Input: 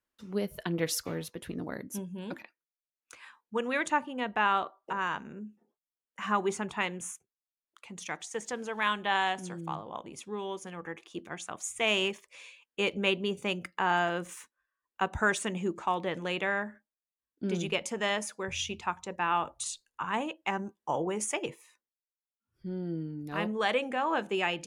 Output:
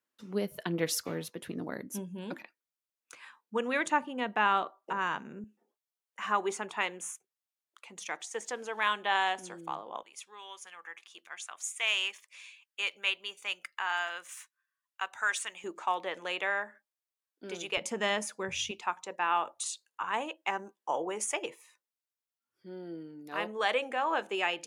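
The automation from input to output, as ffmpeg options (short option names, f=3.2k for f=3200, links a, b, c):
-af "asetnsamples=n=441:p=0,asendcmd='5.44 highpass f 370;10.03 highpass f 1300;15.64 highpass f 540;17.77 highpass f 140;18.71 highpass f 410',highpass=150"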